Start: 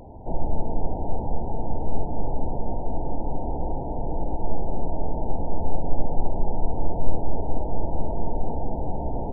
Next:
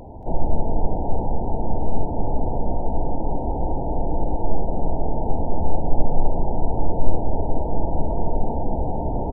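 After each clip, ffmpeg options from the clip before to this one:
-af "aecho=1:1:228:0.335,volume=4dB"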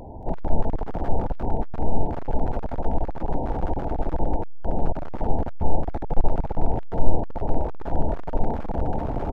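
-af "aeval=exprs='clip(val(0),-1,0.0562)':c=same"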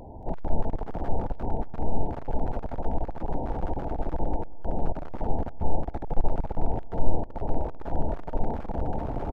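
-af "aecho=1:1:194:0.0841,volume=-4dB"

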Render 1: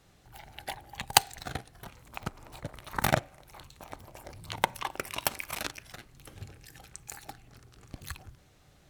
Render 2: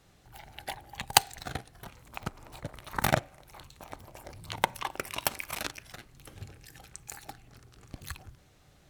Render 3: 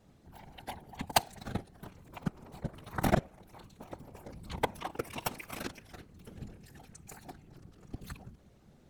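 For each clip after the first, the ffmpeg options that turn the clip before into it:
-af anull
-af "equalizer=f=200:w=0.31:g=12.5,afftfilt=real='hypot(re,im)*cos(2*PI*random(0))':imag='hypot(re,im)*sin(2*PI*random(1))':win_size=512:overlap=0.75,volume=-2.5dB"

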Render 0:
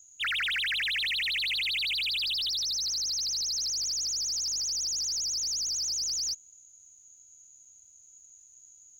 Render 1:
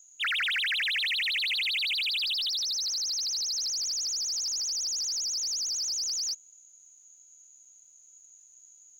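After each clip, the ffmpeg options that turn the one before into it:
-af "bass=f=250:g=-13,treble=f=4k:g=-2,volume=1.5dB"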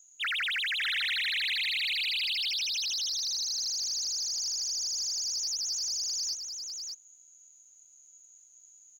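-af "aecho=1:1:603:0.531,volume=-2.5dB"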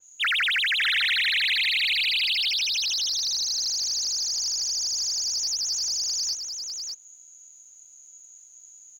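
-af "adynamicequalizer=threshold=0.00708:dfrequency=4000:dqfactor=0.7:tfrequency=4000:tqfactor=0.7:attack=5:release=100:ratio=0.375:range=1.5:mode=cutabove:tftype=highshelf,volume=7.5dB"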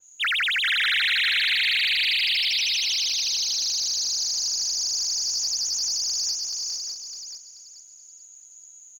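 -af "aecho=1:1:433|866|1299|1732:0.562|0.157|0.0441|0.0123"

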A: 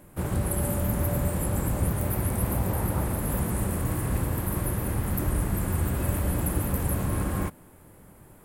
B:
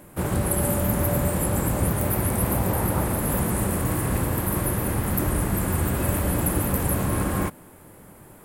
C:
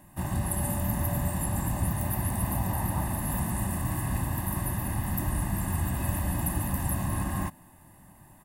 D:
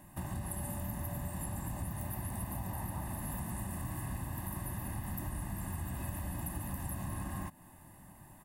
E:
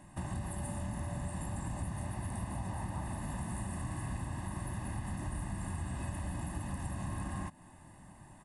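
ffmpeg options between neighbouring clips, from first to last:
-af "lowshelf=f=110:g=-7.5,volume=6dB"
-af "aecho=1:1:1.1:0.87,volume=-9dB"
-af "acompressor=threshold=-37dB:ratio=3,volume=-1.5dB"
-af "aresample=22050,aresample=44100,volume=1dB"

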